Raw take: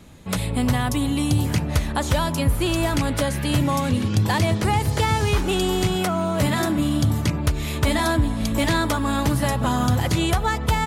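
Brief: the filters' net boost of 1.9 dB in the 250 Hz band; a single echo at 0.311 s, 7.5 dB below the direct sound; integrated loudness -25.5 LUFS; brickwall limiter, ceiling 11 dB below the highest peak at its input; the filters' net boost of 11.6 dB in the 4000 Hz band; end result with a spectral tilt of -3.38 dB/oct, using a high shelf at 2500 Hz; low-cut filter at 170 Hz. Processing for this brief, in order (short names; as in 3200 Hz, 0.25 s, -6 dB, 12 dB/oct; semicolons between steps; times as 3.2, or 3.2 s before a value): HPF 170 Hz; bell 250 Hz +3.5 dB; high shelf 2500 Hz +6.5 dB; bell 4000 Hz +9 dB; limiter -13 dBFS; echo 0.311 s -7.5 dB; gain -3.5 dB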